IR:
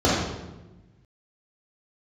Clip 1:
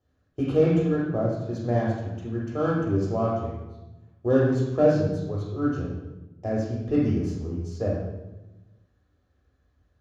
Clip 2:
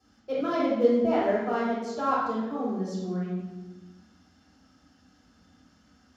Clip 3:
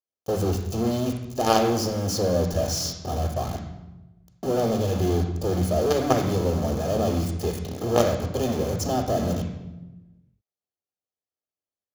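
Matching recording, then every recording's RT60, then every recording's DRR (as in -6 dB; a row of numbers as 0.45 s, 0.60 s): 2; 1.1 s, 1.1 s, 1.1 s; -3.5 dB, -7.5 dB, 6.0 dB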